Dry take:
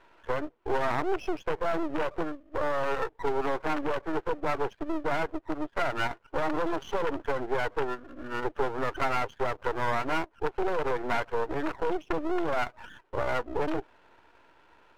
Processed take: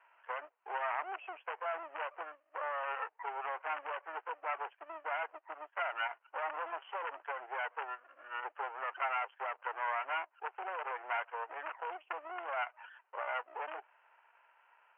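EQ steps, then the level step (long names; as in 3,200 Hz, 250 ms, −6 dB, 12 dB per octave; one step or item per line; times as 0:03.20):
high-pass filter 700 Hz 24 dB per octave
Butterworth low-pass 3,000 Hz 96 dB per octave
−5.0 dB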